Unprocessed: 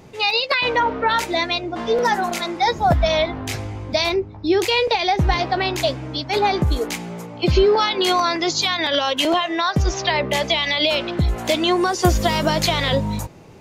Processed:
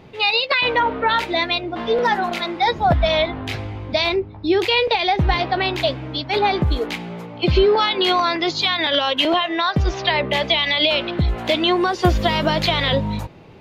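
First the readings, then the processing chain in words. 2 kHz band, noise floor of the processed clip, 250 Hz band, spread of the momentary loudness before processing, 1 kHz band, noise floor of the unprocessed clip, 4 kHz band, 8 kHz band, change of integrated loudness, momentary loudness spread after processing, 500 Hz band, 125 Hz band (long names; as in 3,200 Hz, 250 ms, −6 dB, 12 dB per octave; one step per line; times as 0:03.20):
+1.5 dB, −36 dBFS, 0.0 dB, 6 LU, +0.5 dB, −36 dBFS, +1.5 dB, −11.0 dB, +0.5 dB, 7 LU, 0.0 dB, 0.0 dB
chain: high shelf with overshoot 5,000 Hz −10.5 dB, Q 1.5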